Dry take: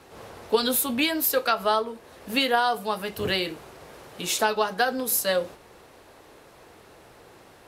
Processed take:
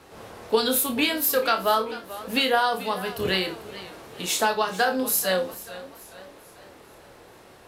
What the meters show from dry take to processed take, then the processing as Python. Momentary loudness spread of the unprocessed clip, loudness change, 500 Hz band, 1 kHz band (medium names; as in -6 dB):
12 LU, +1.0 dB, +1.0 dB, +1.0 dB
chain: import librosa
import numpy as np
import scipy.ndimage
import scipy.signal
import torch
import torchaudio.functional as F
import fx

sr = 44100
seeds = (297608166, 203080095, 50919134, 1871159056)

y = fx.room_flutter(x, sr, wall_m=4.6, rt60_s=0.23)
y = fx.echo_warbled(y, sr, ms=439, feedback_pct=47, rate_hz=2.8, cents=99, wet_db=-16.0)